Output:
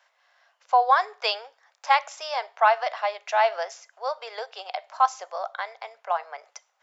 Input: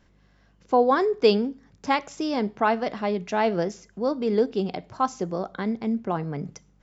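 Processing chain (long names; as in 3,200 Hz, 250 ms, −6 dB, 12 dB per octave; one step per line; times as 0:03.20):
Butterworth high-pass 620 Hz 48 dB per octave
high-shelf EQ 6,100 Hz −5.5 dB
level +4.5 dB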